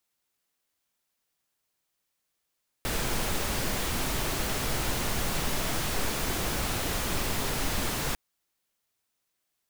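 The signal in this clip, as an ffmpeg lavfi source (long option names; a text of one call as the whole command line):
ffmpeg -f lavfi -i "anoisesrc=color=pink:amplitude=0.182:duration=5.3:sample_rate=44100:seed=1" out.wav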